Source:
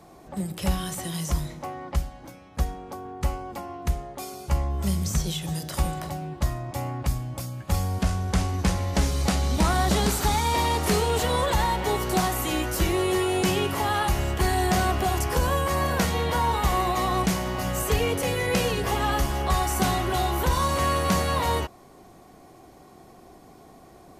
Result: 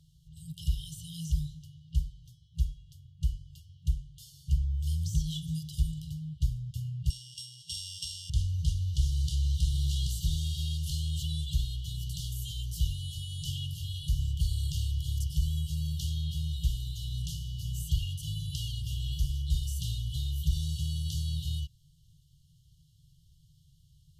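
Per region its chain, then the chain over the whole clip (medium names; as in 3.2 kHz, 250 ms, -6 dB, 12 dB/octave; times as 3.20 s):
7.10–8.30 s: sorted samples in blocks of 16 samples + frequency weighting ITU-R 468
whole clip: FFT band-reject 170–2800 Hz; treble shelf 4.3 kHz -12 dB; trim -2.5 dB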